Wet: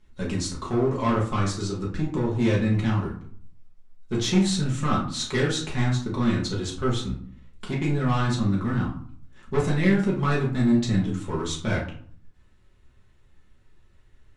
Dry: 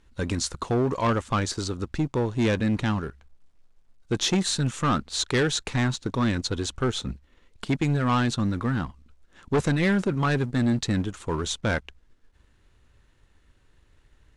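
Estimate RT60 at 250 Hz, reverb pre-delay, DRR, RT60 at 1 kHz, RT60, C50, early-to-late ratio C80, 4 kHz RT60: 0.70 s, 5 ms, −5.0 dB, 0.55 s, 0.55 s, 6.5 dB, 11.5 dB, 0.30 s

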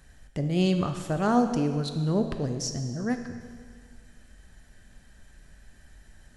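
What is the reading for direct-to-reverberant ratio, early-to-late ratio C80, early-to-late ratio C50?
6.0 dB, 9.0 dB, 7.5 dB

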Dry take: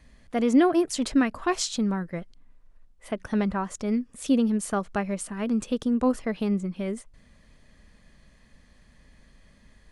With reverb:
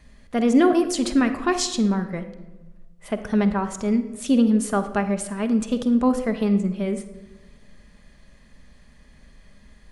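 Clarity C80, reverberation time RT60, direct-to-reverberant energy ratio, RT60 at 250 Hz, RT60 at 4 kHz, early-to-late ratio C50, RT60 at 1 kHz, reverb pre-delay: 13.0 dB, 1.1 s, 7.5 dB, 1.5 s, 0.70 s, 10.5 dB, 1.0 s, 5 ms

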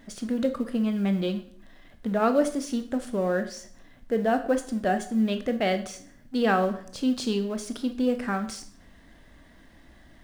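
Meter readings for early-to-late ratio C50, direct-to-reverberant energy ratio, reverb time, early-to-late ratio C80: 12.0 dB, 8.0 dB, 0.55 s, 15.5 dB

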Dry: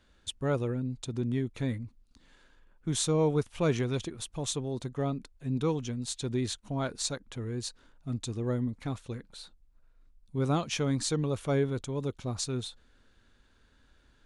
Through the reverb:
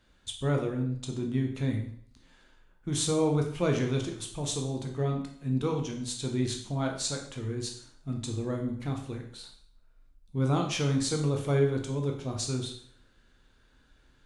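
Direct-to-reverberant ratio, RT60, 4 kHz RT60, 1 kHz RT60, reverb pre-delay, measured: 2.0 dB, 0.55 s, 0.55 s, 0.60 s, 5 ms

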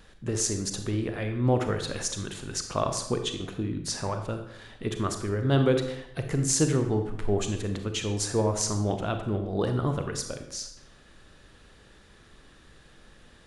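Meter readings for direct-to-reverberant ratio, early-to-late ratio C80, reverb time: 6.0 dB, 10.0 dB, 0.80 s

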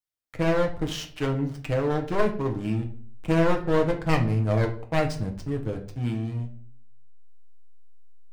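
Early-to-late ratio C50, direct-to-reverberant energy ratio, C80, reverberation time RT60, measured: 11.5 dB, 2.0 dB, 16.0 dB, 0.45 s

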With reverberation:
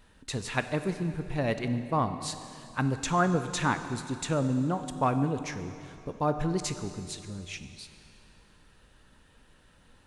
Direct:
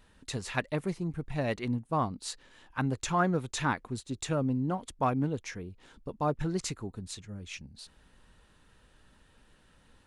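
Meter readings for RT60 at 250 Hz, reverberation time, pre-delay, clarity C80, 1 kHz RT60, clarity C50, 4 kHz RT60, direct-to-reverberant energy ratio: 2.7 s, 2.7 s, 8 ms, 10.5 dB, 2.7 s, 10.0 dB, 2.5 s, 9.0 dB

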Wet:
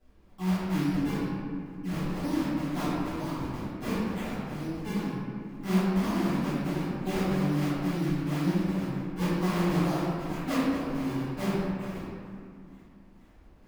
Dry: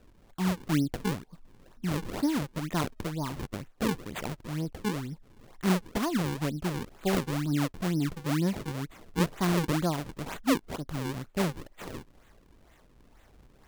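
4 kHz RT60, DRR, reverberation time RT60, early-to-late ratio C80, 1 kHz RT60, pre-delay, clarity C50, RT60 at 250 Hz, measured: 1.3 s, −15.5 dB, 2.3 s, −1.5 dB, 2.2 s, 4 ms, −4.0 dB, 3.4 s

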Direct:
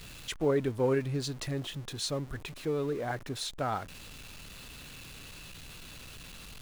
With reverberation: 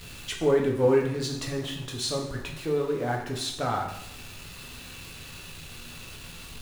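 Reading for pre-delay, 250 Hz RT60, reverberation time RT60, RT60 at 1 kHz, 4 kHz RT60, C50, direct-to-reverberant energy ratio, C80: 5 ms, 0.85 s, 0.80 s, 0.80 s, 0.75 s, 5.5 dB, 0.0 dB, 8.5 dB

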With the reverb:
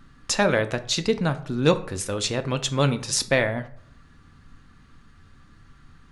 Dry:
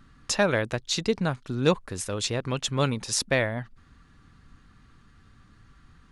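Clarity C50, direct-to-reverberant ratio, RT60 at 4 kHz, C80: 15.5 dB, 9.0 dB, 0.35 s, 19.0 dB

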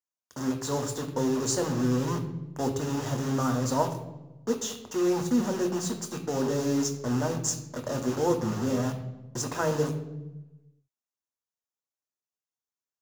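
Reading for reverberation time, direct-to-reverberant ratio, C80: 1.0 s, 4.5 dB, 12.0 dB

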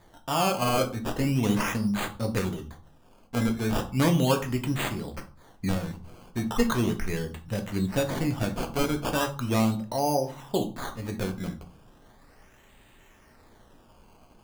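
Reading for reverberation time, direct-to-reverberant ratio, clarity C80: 0.40 s, 4.0 dB, 18.5 dB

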